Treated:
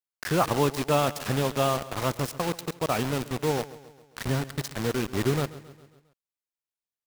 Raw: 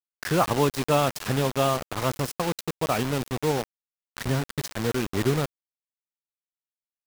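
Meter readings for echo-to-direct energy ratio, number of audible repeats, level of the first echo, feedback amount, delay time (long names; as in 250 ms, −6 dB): −16.0 dB, 4, −17.5 dB, 54%, 135 ms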